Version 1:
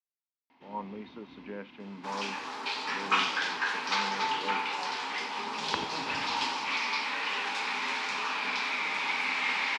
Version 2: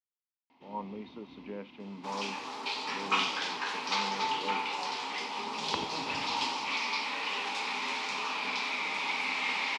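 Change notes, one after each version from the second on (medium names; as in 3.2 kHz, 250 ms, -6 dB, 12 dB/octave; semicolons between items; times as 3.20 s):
master: add peaking EQ 1.6 kHz -9 dB 0.54 oct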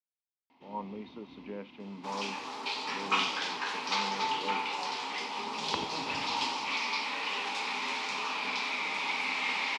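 no change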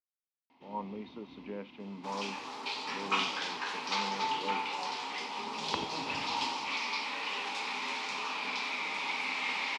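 reverb: off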